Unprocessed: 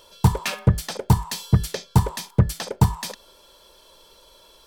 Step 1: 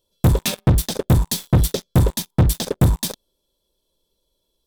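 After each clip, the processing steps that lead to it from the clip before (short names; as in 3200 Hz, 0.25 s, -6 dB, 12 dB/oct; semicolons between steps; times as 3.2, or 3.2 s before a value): EQ curve 270 Hz 0 dB, 1400 Hz -20 dB, 13000 Hz -2 dB; sample leveller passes 5; bell 3600 Hz +8 dB 0.24 oct; gain -4 dB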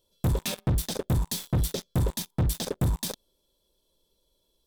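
limiter -20.5 dBFS, peak gain reduction 11.5 dB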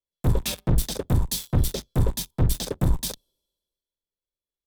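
octaver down 2 oct, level -1 dB; three-band expander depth 70%; gain +2 dB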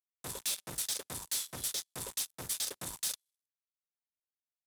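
CVSD 64 kbps; differentiator; sample leveller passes 3; gain -4.5 dB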